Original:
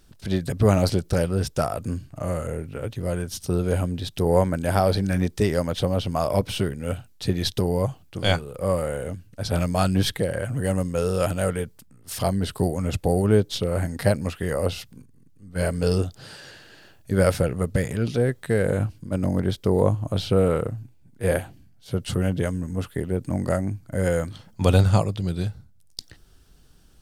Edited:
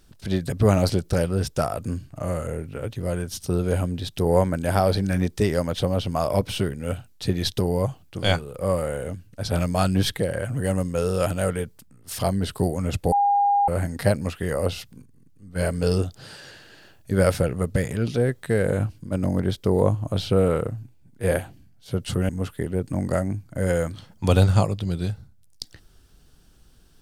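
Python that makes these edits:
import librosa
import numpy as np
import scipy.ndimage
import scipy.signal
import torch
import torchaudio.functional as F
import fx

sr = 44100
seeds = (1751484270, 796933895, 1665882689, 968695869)

y = fx.edit(x, sr, fx.bleep(start_s=13.12, length_s=0.56, hz=809.0, db=-16.0),
    fx.cut(start_s=22.29, length_s=0.37), tone=tone)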